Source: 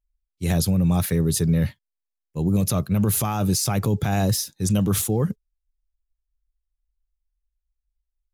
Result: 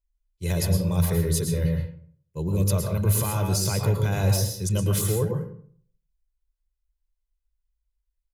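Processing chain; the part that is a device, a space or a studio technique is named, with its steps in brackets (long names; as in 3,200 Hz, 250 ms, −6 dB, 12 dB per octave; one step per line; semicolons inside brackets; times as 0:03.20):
microphone above a desk (comb filter 2 ms, depth 64%; convolution reverb RT60 0.55 s, pre-delay 106 ms, DRR 2 dB)
level −5 dB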